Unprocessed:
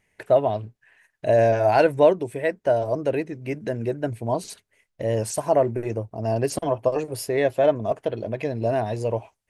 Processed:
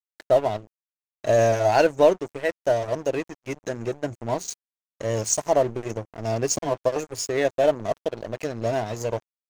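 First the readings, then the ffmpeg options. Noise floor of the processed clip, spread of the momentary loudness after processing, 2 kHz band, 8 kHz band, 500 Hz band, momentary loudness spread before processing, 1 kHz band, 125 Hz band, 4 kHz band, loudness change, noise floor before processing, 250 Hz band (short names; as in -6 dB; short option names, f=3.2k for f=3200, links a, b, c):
under -85 dBFS, 13 LU, +0.5 dB, +8.5 dB, -1.5 dB, 11 LU, -1.0 dB, -3.0 dB, +4.0 dB, -1.0 dB, -76 dBFS, -2.5 dB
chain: -af "lowpass=f=6.6k:t=q:w=7.1,aeval=exprs='0.596*(cos(1*acos(clip(val(0)/0.596,-1,1)))-cos(1*PI/2))+0.0106*(cos(4*acos(clip(val(0)/0.596,-1,1)))-cos(4*PI/2))':c=same,aeval=exprs='sgn(val(0))*max(abs(val(0))-0.02,0)':c=same"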